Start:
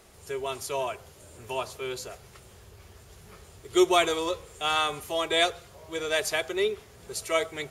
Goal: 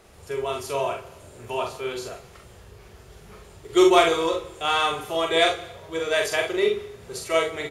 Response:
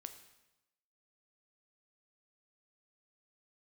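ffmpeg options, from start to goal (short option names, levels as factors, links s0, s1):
-filter_complex "[0:a]highshelf=f=4200:g=-7,aeval=exprs='0.316*(cos(1*acos(clip(val(0)/0.316,-1,1)))-cos(1*PI/2))+0.0251*(cos(3*acos(clip(val(0)/0.316,-1,1)))-cos(3*PI/2))':c=same,aecho=1:1:43|67:0.668|0.335,asplit=2[s0][s1];[1:a]atrim=start_sample=2205[s2];[s1][s2]afir=irnorm=-1:irlink=0,volume=2.66[s3];[s0][s3]amix=inputs=2:normalize=0,volume=0.75"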